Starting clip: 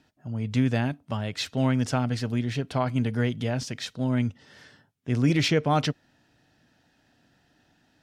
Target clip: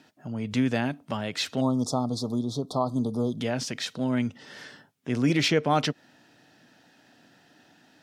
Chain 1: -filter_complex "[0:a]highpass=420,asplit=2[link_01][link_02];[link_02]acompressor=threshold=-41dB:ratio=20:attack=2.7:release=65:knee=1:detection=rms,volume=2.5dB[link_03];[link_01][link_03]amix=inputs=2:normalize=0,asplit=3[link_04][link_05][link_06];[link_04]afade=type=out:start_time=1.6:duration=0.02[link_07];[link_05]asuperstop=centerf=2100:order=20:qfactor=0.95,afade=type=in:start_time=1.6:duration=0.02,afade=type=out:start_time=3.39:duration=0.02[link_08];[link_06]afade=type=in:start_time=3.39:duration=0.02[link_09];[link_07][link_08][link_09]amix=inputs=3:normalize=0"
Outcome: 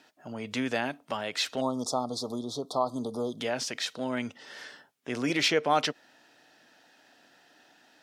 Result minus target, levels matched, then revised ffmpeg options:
250 Hz band −4.0 dB
-filter_complex "[0:a]highpass=180,asplit=2[link_01][link_02];[link_02]acompressor=threshold=-41dB:ratio=20:attack=2.7:release=65:knee=1:detection=rms,volume=2.5dB[link_03];[link_01][link_03]amix=inputs=2:normalize=0,asplit=3[link_04][link_05][link_06];[link_04]afade=type=out:start_time=1.6:duration=0.02[link_07];[link_05]asuperstop=centerf=2100:order=20:qfactor=0.95,afade=type=in:start_time=1.6:duration=0.02,afade=type=out:start_time=3.39:duration=0.02[link_08];[link_06]afade=type=in:start_time=3.39:duration=0.02[link_09];[link_07][link_08][link_09]amix=inputs=3:normalize=0"

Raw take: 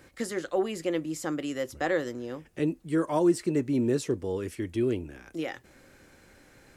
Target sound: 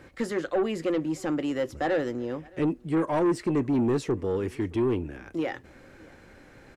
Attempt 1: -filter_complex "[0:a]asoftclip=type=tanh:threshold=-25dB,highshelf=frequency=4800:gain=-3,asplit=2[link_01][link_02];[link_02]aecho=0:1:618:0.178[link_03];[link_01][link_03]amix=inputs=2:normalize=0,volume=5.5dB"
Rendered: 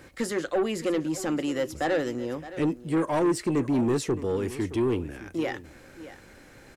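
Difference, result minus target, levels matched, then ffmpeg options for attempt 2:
8,000 Hz band +7.5 dB; echo-to-direct +11 dB
-filter_complex "[0:a]asoftclip=type=tanh:threshold=-25dB,highshelf=frequency=4800:gain=-14,asplit=2[link_01][link_02];[link_02]aecho=0:1:618:0.0501[link_03];[link_01][link_03]amix=inputs=2:normalize=0,volume=5.5dB"

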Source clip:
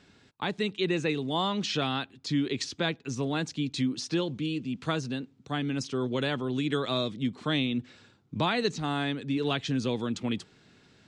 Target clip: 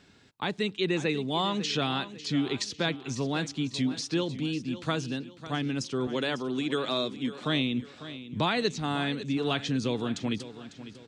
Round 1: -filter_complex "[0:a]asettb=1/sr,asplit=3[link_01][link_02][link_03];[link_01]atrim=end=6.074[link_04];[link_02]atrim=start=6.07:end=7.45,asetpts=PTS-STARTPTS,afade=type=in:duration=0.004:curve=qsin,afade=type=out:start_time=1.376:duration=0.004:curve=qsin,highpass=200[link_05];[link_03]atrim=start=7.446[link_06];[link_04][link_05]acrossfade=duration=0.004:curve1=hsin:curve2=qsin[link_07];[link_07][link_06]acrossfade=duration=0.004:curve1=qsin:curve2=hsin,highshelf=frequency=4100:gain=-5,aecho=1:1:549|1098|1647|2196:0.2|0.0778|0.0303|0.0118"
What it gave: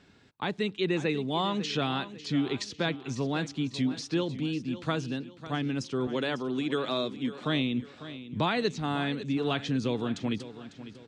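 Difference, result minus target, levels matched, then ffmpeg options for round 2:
8,000 Hz band −4.5 dB
-filter_complex "[0:a]asettb=1/sr,asplit=3[link_01][link_02][link_03];[link_01]atrim=end=6.074[link_04];[link_02]atrim=start=6.07:end=7.45,asetpts=PTS-STARTPTS,afade=type=in:duration=0.004:curve=qsin,afade=type=out:start_time=1.376:duration=0.004:curve=qsin,highpass=200[link_05];[link_03]atrim=start=7.446[link_06];[link_04][link_05]acrossfade=duration=0.004:curve1=hsin:curve2=qsin[link_07];[link_07][link_06]acrossfade=duration=0.004:curve1=qsin:curve2=hsin,highshelf=frequency=4100:gain=2,aecho=1:1:549|1098|1647|2196:0.2|0.0778|0.0303|0.0118"

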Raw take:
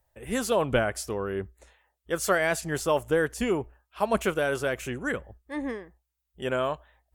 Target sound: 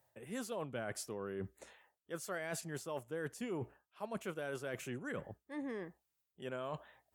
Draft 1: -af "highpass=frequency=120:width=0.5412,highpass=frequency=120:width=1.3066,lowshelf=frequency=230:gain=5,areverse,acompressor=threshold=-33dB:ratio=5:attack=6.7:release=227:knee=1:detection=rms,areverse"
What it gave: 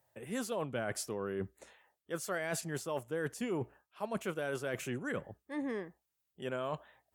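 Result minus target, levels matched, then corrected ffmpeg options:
downward compressor: peak gain reduction −5 dB
-af "highpass=frequency=120:width=0.5412,highpass=frequency=120:width=1.3066,lowshelf=frequency=230:gain=5,areverse,acompressor=threshold=-39dB:ratio=5:attack=6.7:release=227:knee=1:detection=rms,areverse"

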